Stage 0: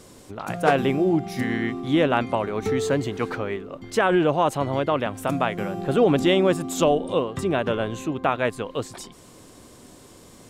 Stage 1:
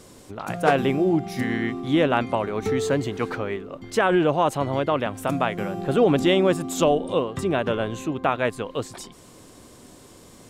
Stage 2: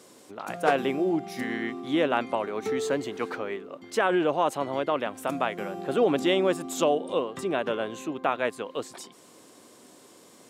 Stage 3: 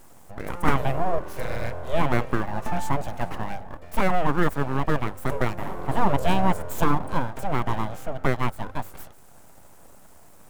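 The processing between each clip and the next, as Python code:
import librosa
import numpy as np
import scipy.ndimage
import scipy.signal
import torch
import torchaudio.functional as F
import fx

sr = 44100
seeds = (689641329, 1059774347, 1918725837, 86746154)

y1 = x
y2 = scipy.signal.sosfilt(scipy.signal.butter(2, 250.0, 'highpass', fs=sr, output='sos'), y1)
y2 = y2 * 10.0 ** (-3.5 / 20.0)
y3 = np.abs(y2)
y3 = fx.peak_eq(y3, sr, hz=4000.0, db=-12.5, octaves=2.3)
y3 = fx.hum_notches(y3, sr, base_hz=50, count=2)
y3 = y3 * 10.0 ** (7.0 / 20.0)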